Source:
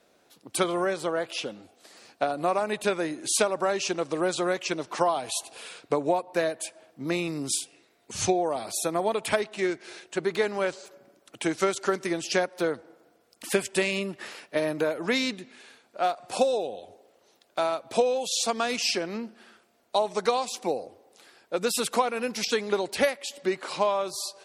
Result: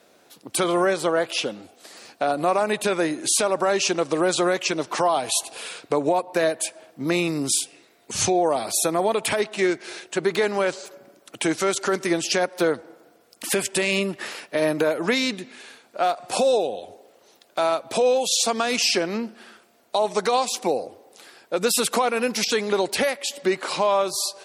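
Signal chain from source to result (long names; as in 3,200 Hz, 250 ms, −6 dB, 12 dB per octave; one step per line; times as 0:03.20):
high-shelf EQ 11,000 Hz +4 dB
brickwall limiter −18 dBFS, peak gain reduction 10 dB
low-shelf EQ 66 Hz −8.5 dB
level +7 dB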